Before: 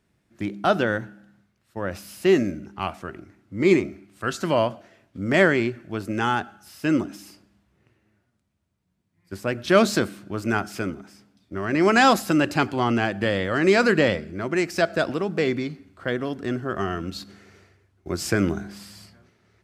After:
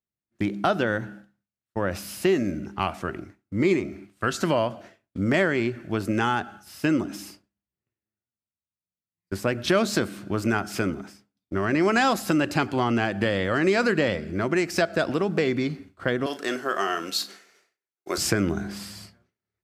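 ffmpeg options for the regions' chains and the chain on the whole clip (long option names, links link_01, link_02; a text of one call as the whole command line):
ffmpeg -i in.wav -filter_complex "[0:a]asettb=1/sr,asplit=3[link_01][link_02][link_03];[link_01]atrim=end=16.264[link_04];[link_02]atrim=start=16.26:end=18.18,asetpts=PTS-STARTPTS,afade=type=in:duration=0.004:curve=qsin,afade=type=out:start_time=1.916:duration=0.004:curve=qsin,highpass=470,highshelf=frequency=3900:gain=9.5,asplit=2[link_05][link_06];[link_06]adelay=36,volume=-12dB[link_07];[link_05][link_07]amix=inputs=2:normalize=0,atrim=end_sample=84672[link_08];[link_03]atrim=start=18.176[link_09];[link_04][link_08]acrossfade=duration=0.004:curve1=hsin:curve2=qsin[link_10];[link_10][link_09]acrossfade=duration=0.004:curve1=qsin:curve2=hsin,agate=range=-33dB:threshold=-43dB:ratio=3:detection=peak,acompressor=threshold=-26dB:ratio=3,volume=5dB" out.wav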